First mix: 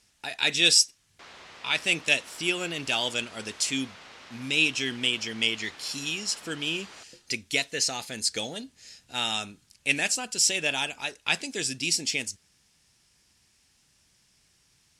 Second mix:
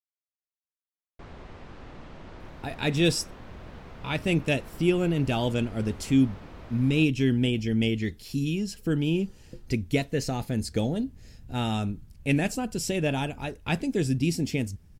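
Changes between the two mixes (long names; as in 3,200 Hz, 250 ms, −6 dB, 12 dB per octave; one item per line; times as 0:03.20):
speech: entry +2.40 s
master: remove meter weighting curve ITU-R 468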